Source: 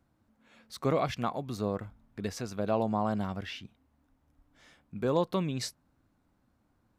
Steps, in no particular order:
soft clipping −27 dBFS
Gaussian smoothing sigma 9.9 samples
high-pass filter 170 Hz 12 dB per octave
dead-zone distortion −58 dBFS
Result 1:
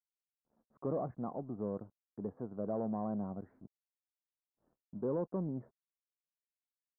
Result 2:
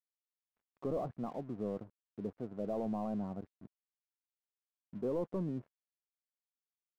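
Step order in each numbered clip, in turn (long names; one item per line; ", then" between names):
soft clipping, then high-pass filter, then dead-zone distortion, then Gaussian smoothing
high-pass filter, then soft clipping, then Gaussian smoothing, then dead-zone distortion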